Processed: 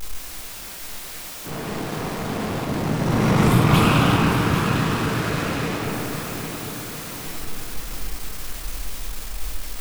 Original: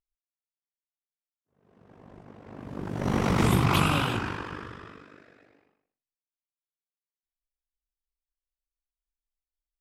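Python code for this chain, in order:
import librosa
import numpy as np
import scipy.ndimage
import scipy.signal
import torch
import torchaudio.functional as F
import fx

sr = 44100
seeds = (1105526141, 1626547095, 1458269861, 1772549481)

y = x + 0.5 * 10.0 ** (-26.0 / 20.0) * np.sign(x)
y = fx.echo_feedback(y, sr, ms=805, feedback_pct=50, wet_db=-9)
y = fx.room_shoebox(y, sr, seeds[0], volume_m3=200.0, walls='hard', distance_m=0.55)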